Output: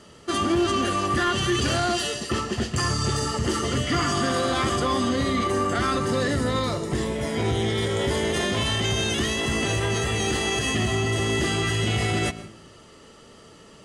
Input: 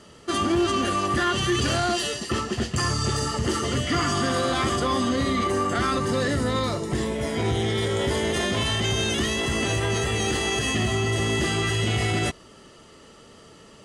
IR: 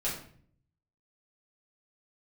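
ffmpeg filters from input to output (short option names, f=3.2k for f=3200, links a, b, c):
-filter_complex "[0:a]asplit=2[a][b];[1:a]atrim=start_sample=2205,adelay=116[c];[b][c]afir=irnorm=-1:irlink=0,volume=-21dB[d];[a][d]amix=inputs=2:normalize=0"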